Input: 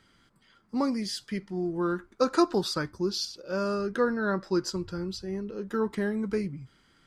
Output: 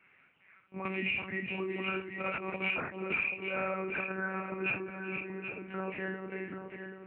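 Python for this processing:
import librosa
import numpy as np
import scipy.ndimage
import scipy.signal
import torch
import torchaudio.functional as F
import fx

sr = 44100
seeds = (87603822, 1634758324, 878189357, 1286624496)

y = fx.freq_compress(x, sr, knee_hz=1900.0, ratio=4.0)
y = scipy.signal.sosfilt(scipy.signal.butter(2, 2700.0, 'lowpass', fs=sr, output='sos'), y)
y = fx.low_shelf(y, sr, hz=420.0, db=-5.0)
y = fx.doubler(y, sr, ms=48.0, db=-6.5)
y = fx.chorus_voices(y, sr, voices=4, hz=1.2, base_ms=23, depth_ms=3.0, mix_pct=40)
y = y + 10.0 ** (-12.0 / 20.0) * np.pad(y, (int(386 * sr / 1000.0), 0))[:len(y)]
y = fx.over_compress(y, sr, threshold_db=-32.0, ratio=-0.5)
y = fx.high_shelf(y, sr, hz=2100.0, db=10.5)
y = fx.lpc_monotone(y, sr, seeds[0], pitch_hz=190.0, order=8)
y = scipy.signal.sosfilt(scipy.signal.butter(2, 150.0, 'highpass', fs=sr, output='sos'), y)
y = y + 10.0 ** (-8.5 / 20.0) * np.pad(y, (int(780 * sr / 1000.0), 0))[:len(y)]
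y = fx.band_squash(y, sr, depth_pct=100, at=(0.85, 3.29))
y = y * 10.0 ** (-2.5 / 20.0)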